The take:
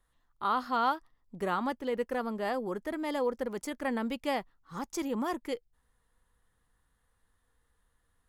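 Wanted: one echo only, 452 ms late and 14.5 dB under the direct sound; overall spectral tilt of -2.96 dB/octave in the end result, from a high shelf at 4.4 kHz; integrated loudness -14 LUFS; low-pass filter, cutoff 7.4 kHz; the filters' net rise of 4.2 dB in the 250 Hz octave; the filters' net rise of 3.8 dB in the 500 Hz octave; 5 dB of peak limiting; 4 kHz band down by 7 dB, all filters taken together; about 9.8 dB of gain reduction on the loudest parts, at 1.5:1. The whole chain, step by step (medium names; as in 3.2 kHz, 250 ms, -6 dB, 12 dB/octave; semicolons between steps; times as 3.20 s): low-pass 7.4 kHz; peaking EQ 250 Hz +4 dB; peaking EQ 500 Hz +3.5 dB; peaking EQ 4 kHz -6.5 dB; treble shelf 4.4 kHz -6 dB; compression 1.5:1, threshold -51 dBFS; peak limiter -30.5 dBFS; delay 452 ms -14.5 dB; trim +27 dB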